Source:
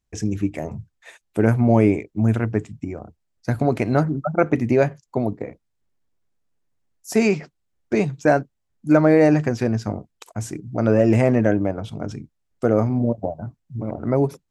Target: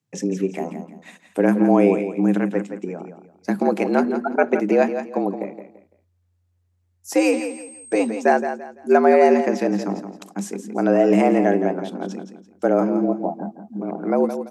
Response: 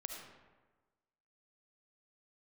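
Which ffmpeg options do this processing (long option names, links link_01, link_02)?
-filter_complex "[0:a]asettb=1/sr,asplit=3[link_01][link_02][link_03];[link_01]atrim=end=7.184[link_04];[link_02]atrim=start=7.18:end=8.07,asetpts=PTS-STARTPTS,afade=type=in:duration=0.004:curve=qsin,afade=type=out:start_time=0.886:duration=0.004:curve=qsin,aeval=exprs='val(0)+0.0126*sin(2*PI*8300*n/s)':channel_layout=same[link_05];[link_03]atrim=start=8.066[link_06];[link_04][link_05]acrossfade=duration=0.004:curve1=hsin:curve2=qsin[link_07];[link_07][link_06]acrossfade=duration=0.004:curve1=qsin:curve2=hsin,afreqshift=88,aecho=1:1:169|338|507:0.335|0.0971|0.0282"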